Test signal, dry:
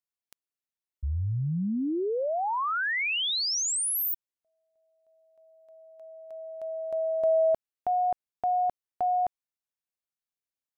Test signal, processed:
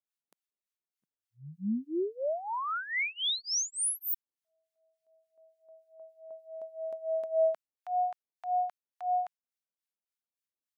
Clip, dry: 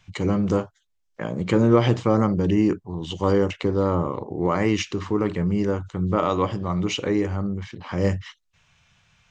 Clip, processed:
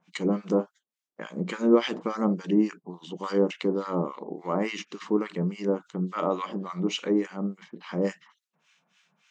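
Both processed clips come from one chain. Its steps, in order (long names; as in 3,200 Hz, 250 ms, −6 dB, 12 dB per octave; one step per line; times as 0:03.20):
linear-phase brick-wall high-pass 160 Hz
two-band tremolo in antiphase 3.5 Hz, depth 100%, crossover 1,100 Hz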